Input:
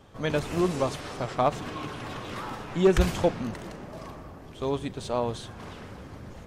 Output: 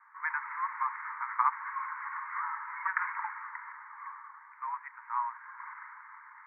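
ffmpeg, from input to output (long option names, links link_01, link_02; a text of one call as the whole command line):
ffmpeg -i in.wav -af "asuperpass=centerf=1400:order=20:qfactor=1.1,volume=4dB" out.wav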